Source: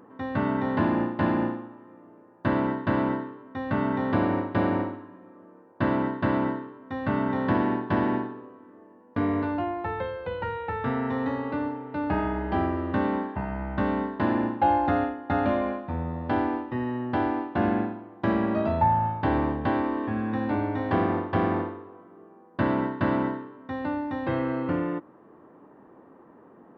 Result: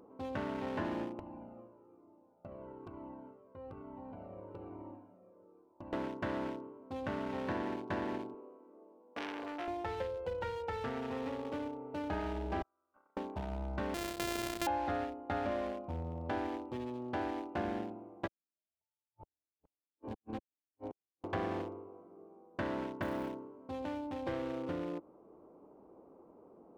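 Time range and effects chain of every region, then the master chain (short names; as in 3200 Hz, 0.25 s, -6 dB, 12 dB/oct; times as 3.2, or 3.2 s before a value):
1.19–5.93 compressor 16:1, threshold -31 dBFS + cascading flanger falling 1.1 Hz
8.34–9.68 HPF 280 Hz + core saturation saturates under 1900 Hz
12.62–13.17 gate -23 dBFS, range -22 dB + band-pass 1400 Hz, Q 6.7 + compressor 3:1, threshold -54 dBFS
13.94–14.67 sample sorter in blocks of 128 samples + compressor 3:1, threshold -26 dBFS
18.26–21.24 reverse delay 0.415 s, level -12 dB + flipped gate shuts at -18 dBFS, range -40 dB + upward expander 2.5:1, over -50 dBFS
23.02–23.62 high shelf 2600 Hz -5.5 dB + short-mantissa float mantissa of 4-bit
whole clip: Wiener smoothing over 25 samples; compressor 2:1, threshold -32 dBFS; graphic EQ 125/250/1000 Hz -10/-7/-5 dB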